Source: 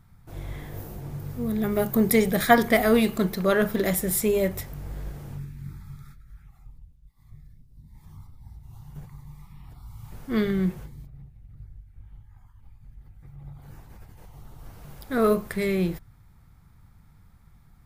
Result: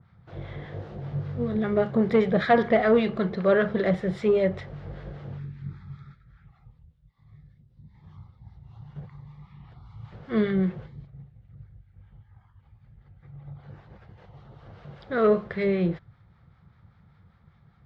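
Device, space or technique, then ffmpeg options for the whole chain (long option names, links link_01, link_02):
guitar amplifier with harmonic tremolo: -filter_complex "[0:a]acrossover=split=840[link_01][link_02];[link_01]aeval=exprs='val(0)*(1-0.5/2+0.5/2*cos(2*PI*5.1*n/s))':channel_layout=same[link_03];[link_02]aeval=exprs='val(0)*(1-0.5/2-0.5/2*cos(2*PI*5.1*n/s))':channel_layout=same[link_04];[link_03][link_04]amix=inputs=2:normalize=0,asoftclip=type=tanh:threshold=-16dB,highpass=90,equalizer=frequency=270:width_type=q:width=4:gain=-9,equalizer=frequency=530:width_type=q:width=4:gain=4,equalizer=frequency=930:width_type=q:width=4:gain=-4,equalizer=frequency=2500:width_type=q:width=4:gain=-5,lowpass=frequency=3700:width=0.5412,lowpass=frequency=3700:width=1.3066,asettb=1/sr,asplit=3[link_05][link_06][link_07];[link_05]atrim=end=1.004[link_08];[link_06]atrim=start=1:end=1.56,asetpts=PTS-STARTPTS,afade=type=in:duration=0.004:curve=qsin,afade=type=out:start_time=0.556:duration=0.004:curve=qsin,asplit=2[link_09][link_10];[link_10]adelay=21,volume=-6dB[link_11];[link_09][link_11]amix=inputs=2:normalize=0,atrim=end_sample=24696[link_12];[link_07]atrim=start=1.556[link_13];[link_08][link_12]acrossfade=duration=0.004:curve1=hsin:curve2=qsin[link_14];[link_14][link_13]acrossfade=duration=0.004:curve1=qsin:curve2=hsin,adynamicequalizer=threshold=0.00447:dfrequency=2600:dqfactor=0.7:tfrequency=2600:tqfactor=0.7:attack=5:release=100:ratio=0.375:range=2.5:mode=cutabove:tftype=highshelf,volume=4.5dB"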